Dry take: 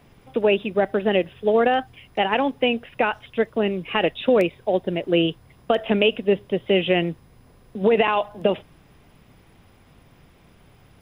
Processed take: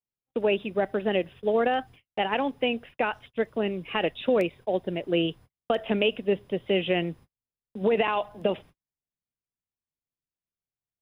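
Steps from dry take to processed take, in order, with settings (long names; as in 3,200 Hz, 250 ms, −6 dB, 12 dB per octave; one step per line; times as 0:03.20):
noise gate −40 dBFS, range −44 dB
level −5.5 dB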